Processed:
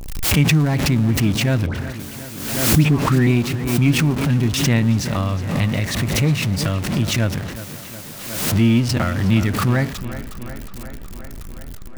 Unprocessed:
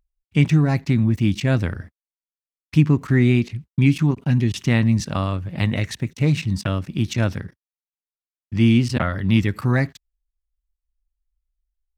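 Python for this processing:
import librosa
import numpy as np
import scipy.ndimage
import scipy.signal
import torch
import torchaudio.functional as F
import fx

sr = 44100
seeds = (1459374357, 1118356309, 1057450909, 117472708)

y = x + 0.5 * 10.0 ** (-24.5 / 20.0) * np.sign(x)
y = fx.dispersion(y, sr, late='highs', ms=88.0, hz=1200.0, at=(1.66, 3.27))
y = fx.echo_tape(y, sr, ms=365, feedback_pct=79, wet_db=-12.0, lp_hz=4000.0, drive_db=2.0, wow_cents=8)
y = fx.pre_swell(y, sr, db_per_s=49.0)
y = y * librosa.db_to_amplitude(-1.0)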